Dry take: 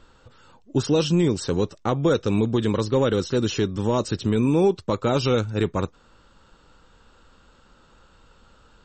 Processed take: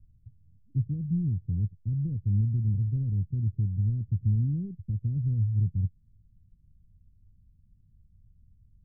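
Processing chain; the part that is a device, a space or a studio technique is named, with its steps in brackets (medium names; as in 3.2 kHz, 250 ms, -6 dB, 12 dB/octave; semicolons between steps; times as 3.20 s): the neighbour's flat through the wall (low-pass 160 Hz 24 dB/octave; peaking EQ 98 Hz +7.5 dB 0.78 oct); trim -3 dB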